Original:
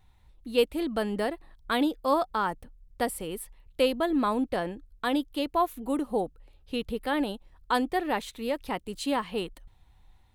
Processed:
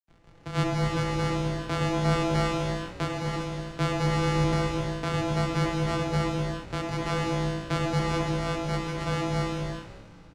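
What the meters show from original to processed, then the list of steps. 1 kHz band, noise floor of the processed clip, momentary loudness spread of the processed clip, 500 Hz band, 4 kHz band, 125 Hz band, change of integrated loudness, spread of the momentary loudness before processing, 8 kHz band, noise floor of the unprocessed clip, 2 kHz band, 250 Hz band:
−1.0 dB, −51 dBFS, 7 LU, −1.0 dB, +1.0 dB, +21.0 dB, +1.5 dB, 11 LU, +3.0 dB, −61 dBFS, +2.0 dB, +0.5 dB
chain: samples sorted by size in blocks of 256 samples
low-shelf EQ 68 Hz −11 dB
noise gate with hold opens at −50 dBFS
in parallel at −1 dB: downward compressor, threshold −38 dBFS, peak gain reduction 19 dB
on the sum: soft clipping −15 dBFS, distortion −18 dB
bit reduction 11 bits
frequency shifter −19 Hz
high-frequency loss of the air 90 metres
echo with shifted repeats 246 ms, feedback 49%, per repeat −110 Hz, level −16.5 dB
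reverb whose tail is shaped and stops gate 420 ms flat, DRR −2 dB

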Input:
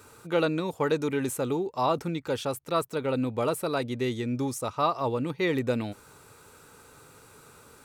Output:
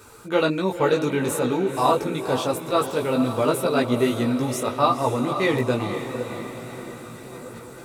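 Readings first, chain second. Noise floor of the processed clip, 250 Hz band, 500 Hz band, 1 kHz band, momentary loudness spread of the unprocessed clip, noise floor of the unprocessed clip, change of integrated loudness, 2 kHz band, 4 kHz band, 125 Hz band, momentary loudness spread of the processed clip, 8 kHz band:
−41 dBFS, +6.5 dB, +6.0 dB, +6.5 dB, 4 LU, −54 dBFS, +6.0 dB, +6.5 dB, +6.5 dB, +5.0 dB, 15 LU, +6.0 dB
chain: feedback delay with all-pass diffusion 506 ms, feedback 57%, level −9 dB
multi-voice chorus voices 6, 1.1 Hz, delay 18 ms, depth 3 ms
level +8.5 dB

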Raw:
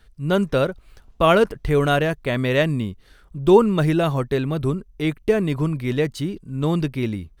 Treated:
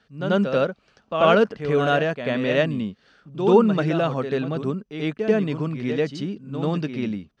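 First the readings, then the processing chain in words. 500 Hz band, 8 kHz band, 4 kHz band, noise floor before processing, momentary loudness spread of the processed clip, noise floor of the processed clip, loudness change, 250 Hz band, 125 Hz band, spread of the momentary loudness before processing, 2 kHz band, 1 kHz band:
−1.0 dB, can't be measured, −2.0 dB, −53 dBFS, 12 LU, −64 dBFS, −1.5 dB, −1.5 dB, −5.0 dB, 10 LU, −1.0 dB, −1.0 dB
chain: loudspeaker in its box 200–5,700 Hz, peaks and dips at 210 Hz +4 dB, 350 Hz −6 dB, 990 Hz −4 dB, 2,100 Hz −5 dB, 3,800 Hz −5 dB
backwards echo 89 ms −7.5 dB

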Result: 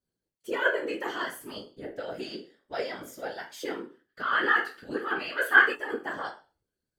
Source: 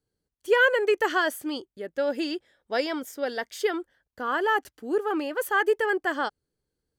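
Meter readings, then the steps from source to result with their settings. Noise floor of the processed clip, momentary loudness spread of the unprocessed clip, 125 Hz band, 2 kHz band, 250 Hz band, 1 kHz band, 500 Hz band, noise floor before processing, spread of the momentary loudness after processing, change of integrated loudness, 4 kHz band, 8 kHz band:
below −85 dBFS, 13 LU, can't be measured, +1.0 dB, −7.0 dB, −3.5 dB, −8.5 dB, −85 dBFS, 19 LU, −2.0 dB, −3.0 dB, −6.0 dB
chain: resonators tuned to a chord C3 sus4, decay 0.34 s
in parallel at −2.5 dB: downward compressor, threshold −49 dBFS, peak gain reduction 21 dB
on the sum: gain on a spectral selection 0:04.09–0:05.75, 1,200–5,000 Hz +11 dB
random phases in short frames
level +6 dB

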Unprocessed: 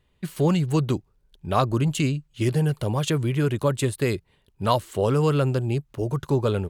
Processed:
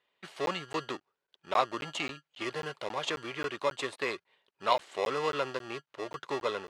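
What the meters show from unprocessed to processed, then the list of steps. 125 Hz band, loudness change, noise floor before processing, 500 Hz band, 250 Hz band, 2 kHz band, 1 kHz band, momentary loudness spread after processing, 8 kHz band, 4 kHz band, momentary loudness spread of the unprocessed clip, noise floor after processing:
−28.0 dB, −10.0 dB, −66 dBFS, −8.5 dB, −17.5 dB, −1.0 dB, −3.5 dB, 11 LU, −11.5 dB, −3.0 dB, 7 LU, below −85 dBFS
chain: in parallel at −7.5 dB: decimation without filtering 29×
on the sum: band-pass filter 710–4,400 Hz
regular buffer underruns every 0.27 s, samples 512, zero, from 0:00.46
level −2.5 dB

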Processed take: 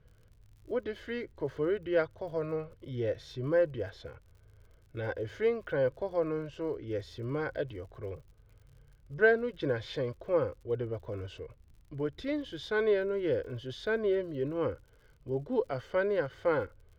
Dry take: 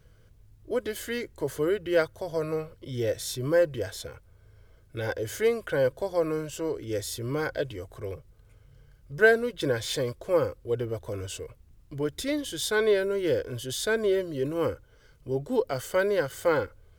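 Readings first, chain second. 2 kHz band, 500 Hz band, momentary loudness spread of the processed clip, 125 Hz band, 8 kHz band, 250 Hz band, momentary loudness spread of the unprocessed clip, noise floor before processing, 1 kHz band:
−5.5 dB, −4.0 dB, 13 LU, −3.5 dB, below −20 dB, −4.0 dB, 13 LU, −58 dBFS, −5.0 dB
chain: high-frequency loss of the air 270 metres
surface crackle 61 per second −49 dBFS
level −3.5 dB

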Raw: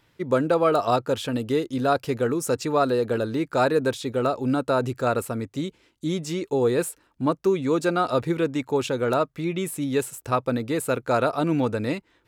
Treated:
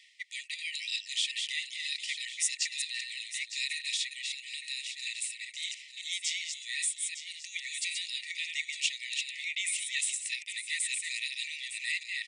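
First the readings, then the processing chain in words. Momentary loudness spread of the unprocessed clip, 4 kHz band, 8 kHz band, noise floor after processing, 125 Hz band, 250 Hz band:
6 LU, +5.5 dB, +5.0 dB, −50 dBFS, below −40 dB, below −40 dB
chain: delay that plays each chunk backwards 188 ms, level −5 dB
reversed playback
upward compression, threshold −23 dBFS
reversed playback
linear-phase brick-wall band-pass 1,800–9,800 Hz
single-tap delay 908 ms −11 dB
level +4 dB

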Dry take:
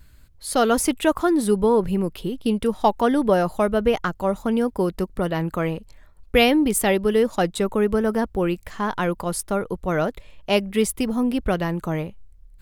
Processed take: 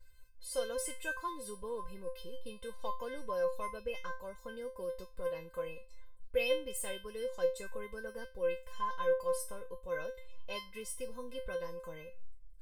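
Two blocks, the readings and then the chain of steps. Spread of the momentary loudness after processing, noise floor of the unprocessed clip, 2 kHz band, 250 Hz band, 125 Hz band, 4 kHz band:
13 LU, −50 dBFS, −14.0 dB, −30.5 dB, −28.0 dB, −16.0 dB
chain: in parallel at 0 dB: downward compressor, threshold −34 dBFS, peak gain reduction 20 dB
on the sum: tuned comb filter 520 Hz, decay 0.28 s, harmonics all, mix 100%

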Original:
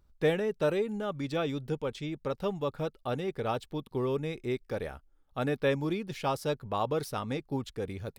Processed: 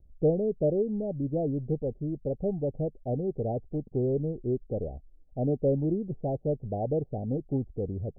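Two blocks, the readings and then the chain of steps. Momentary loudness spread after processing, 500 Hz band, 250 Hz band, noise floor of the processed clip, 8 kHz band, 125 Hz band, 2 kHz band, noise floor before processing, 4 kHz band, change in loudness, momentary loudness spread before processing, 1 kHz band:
7 LU, +2.0 dB, +4.0 dB, −57 dBFS, can't be measured, +5.5 dB, below −40 dB, −66 dBFS, below −40 dB, +2.5 dB, 8 LU, −6.5 dB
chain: Butterworth low-pass 760 Hz 96 dB per octave
spectral tilt −2 dB per octave

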